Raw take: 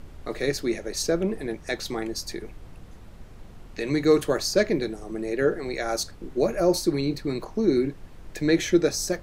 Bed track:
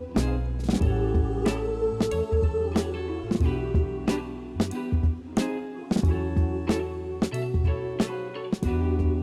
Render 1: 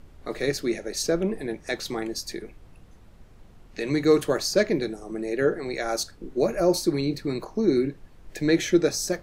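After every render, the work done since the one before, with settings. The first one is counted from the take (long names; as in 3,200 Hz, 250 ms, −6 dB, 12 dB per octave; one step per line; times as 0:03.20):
noise reduction from a noise print 6 dB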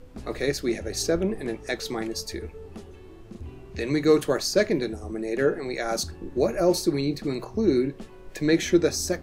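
mix in bed track −17 dB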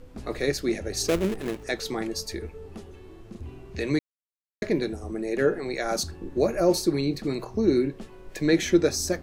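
0:01.08–0:01.64: gap after every zero crossing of 0.24 ms
0:03.99–0:04.62: silence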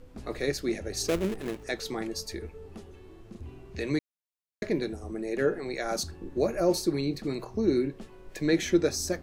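level −3.5 dB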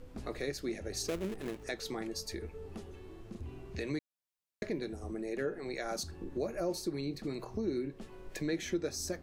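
downward compressor 2 to 1, threshold −39 dBFS, peak gain reduction 12 dB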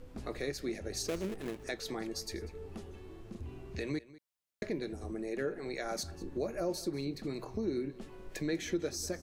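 single-tap delay 194 ms −19.5 dB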